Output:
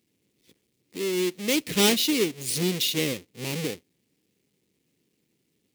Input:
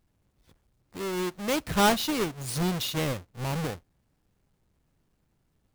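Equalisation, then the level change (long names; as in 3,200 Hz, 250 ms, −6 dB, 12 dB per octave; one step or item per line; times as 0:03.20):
high-pass filter 250 Hz 12 dB per octave
flat-topped bell 980 Hz −15 dB
+6.5 dB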